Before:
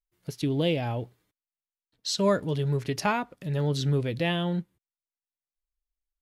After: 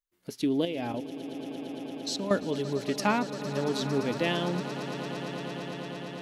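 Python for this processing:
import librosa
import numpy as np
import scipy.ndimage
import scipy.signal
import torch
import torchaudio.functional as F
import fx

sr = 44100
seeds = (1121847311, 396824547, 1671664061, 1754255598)

y = fx.low_shelf_res(x, sr, hz=180.0, db=-6.0, q=3.0)
y = fx.level_steps(y, sr, step_db=16, at=(0.65, 2.31))
y = fx.echo_swell(y, sr, ms=114, loudest=8, wet_db=-16.0)
y = y * 10.0 ** (-1.0 / 20.0)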